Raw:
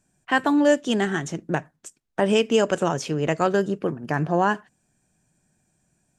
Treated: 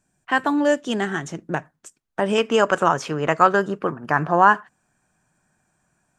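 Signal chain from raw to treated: bell 1200 Hz +4.5 dB 1.4 oct, from 2.38 s +14 dB; gain -2 dB

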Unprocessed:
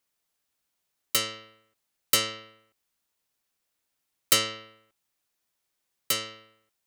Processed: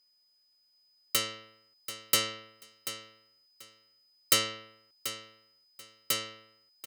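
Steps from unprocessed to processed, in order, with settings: whine 5000 Hz -64 dBFS; feedback echo 0.736 s, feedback 19%, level -12 dB; gain -3 dB

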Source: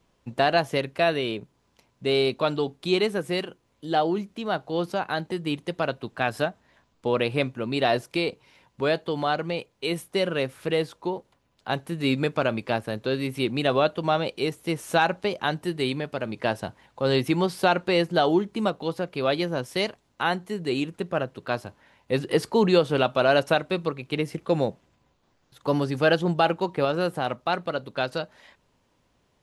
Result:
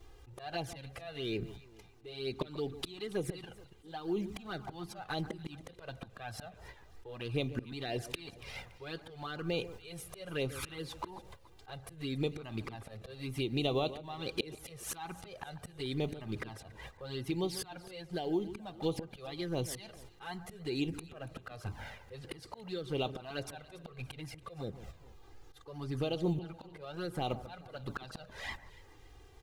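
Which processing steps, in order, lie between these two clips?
G.711 law mismatch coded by mu; gate -49 dBFS, range -13 dB; low shelf 110 Hz +10 dB; comb 2.5 ms, depth 31%; dynamic EQ 4100 Hz, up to +5 dB, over -41 dBFS, Q 1.6; compressor 10:1, threshold -32 dBFS, peak gain reduction 19.5 dB; auto swell 0.608 s; vocal rider within 4 dB 0.5 s; envelope flanger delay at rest 3 ms, full sweep at -37.5 dBFS; echo with dull and thin repeats by turns 0.142 s, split 1800 Hz, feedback 57%, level -13.5 dB; gain +8.5 dB

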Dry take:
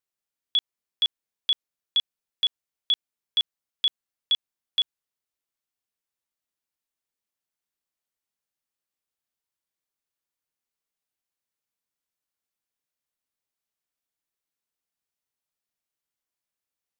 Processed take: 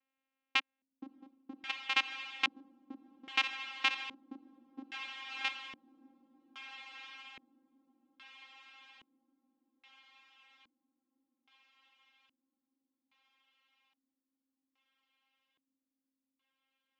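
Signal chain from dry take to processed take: reverse delay 0.57 s, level -11 dB; dynamic EQ 3200 Hz, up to -6 dB, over -36 dBFS, Q 6.8; compressor 2.5:1, threshold -29 dBFS, peak gain reduction 5 dB; vocoder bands 4, saw 267 Hz; diffused feedback echo 0.631 s, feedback 74%, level -11 dB; LFO low-pass square 0.61 Hz 270–2400 Hz

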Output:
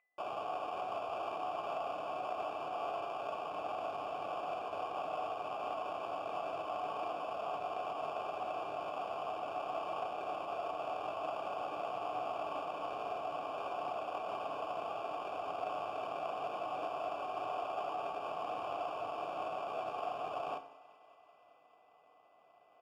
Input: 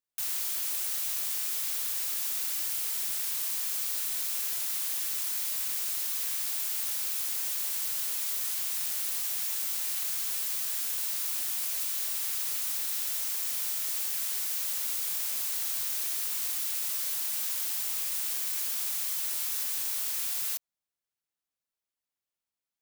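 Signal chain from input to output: steep low-pass 4700 Hz 48 dB/oct; comb 3.9 ms, depth 59%; reverse; upward compressor, threshold -49 dBFS; reverse; sample-and-hold 22×; whine 2000 Hz -65 dBFS; vowel filter a; on a send: thinning echo 0.192 s, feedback 77%, high-pass 250 Hz, level -21 dB; on the sum: FDN reverb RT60 0.58 s, low-frequency decay 1×, high-frequency decay 0.9×, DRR 6.5 dB; core saturation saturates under 340 Hz; gain +14 dB

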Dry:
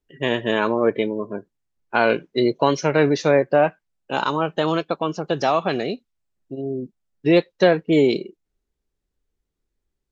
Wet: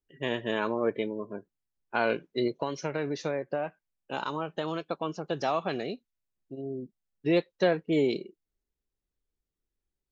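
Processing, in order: 2.47–4.88 compressor, threshold -18 dBFS, peak gain reduction 7 dB; gain -9 dB

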